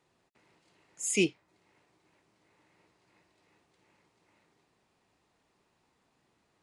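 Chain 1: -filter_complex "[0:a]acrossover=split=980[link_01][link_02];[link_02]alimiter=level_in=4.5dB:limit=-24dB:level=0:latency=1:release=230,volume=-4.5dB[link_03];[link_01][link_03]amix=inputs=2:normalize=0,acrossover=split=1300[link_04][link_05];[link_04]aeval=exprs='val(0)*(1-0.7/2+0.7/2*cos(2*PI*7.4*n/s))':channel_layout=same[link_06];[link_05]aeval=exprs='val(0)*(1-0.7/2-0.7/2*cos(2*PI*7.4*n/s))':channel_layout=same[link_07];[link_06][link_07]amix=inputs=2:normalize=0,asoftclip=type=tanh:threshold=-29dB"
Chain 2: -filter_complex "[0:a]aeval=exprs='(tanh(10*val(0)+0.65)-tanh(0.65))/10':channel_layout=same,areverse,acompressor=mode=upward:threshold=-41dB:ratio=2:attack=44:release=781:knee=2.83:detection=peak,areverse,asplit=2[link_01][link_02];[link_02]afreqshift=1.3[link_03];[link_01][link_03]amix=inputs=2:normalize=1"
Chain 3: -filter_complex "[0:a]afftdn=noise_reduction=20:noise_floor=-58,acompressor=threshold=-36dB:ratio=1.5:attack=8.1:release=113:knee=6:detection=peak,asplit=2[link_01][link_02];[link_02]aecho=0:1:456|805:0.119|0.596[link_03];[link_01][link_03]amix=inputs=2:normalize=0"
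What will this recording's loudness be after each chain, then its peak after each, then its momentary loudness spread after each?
−39.0, −38.5, −36.0 LKFS; −29.0, −23.5, −20.0 dBFS; 6, 6, 16 LU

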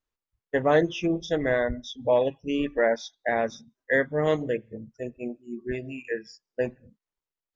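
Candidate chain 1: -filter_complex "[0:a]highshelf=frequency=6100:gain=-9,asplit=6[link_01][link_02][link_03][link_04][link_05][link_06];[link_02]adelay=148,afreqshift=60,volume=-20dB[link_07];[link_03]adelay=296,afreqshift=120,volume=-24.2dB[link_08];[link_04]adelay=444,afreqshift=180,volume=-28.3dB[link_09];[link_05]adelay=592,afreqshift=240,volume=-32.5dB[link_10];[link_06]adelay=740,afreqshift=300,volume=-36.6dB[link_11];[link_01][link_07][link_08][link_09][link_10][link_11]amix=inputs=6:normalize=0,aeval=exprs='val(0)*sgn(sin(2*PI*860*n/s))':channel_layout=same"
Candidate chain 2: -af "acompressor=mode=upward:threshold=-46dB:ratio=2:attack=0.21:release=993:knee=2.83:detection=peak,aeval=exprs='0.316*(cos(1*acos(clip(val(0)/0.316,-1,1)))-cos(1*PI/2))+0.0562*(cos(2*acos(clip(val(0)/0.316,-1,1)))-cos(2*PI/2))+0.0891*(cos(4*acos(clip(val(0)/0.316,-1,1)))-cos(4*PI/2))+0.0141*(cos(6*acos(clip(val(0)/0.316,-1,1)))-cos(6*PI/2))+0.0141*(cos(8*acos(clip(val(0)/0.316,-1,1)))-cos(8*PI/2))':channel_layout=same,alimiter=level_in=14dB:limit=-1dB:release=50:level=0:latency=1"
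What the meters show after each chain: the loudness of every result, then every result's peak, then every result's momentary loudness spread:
−26.0, −16.0 LKFS; −10.5, −1.0 dBFS; 14, 10 LU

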